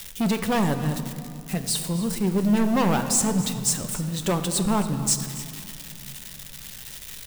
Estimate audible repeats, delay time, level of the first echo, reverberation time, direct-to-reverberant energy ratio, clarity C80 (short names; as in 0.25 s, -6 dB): 1, 0.278 s, -16.0 dB, 2.4 s, 7.0 dB, 9.5 dB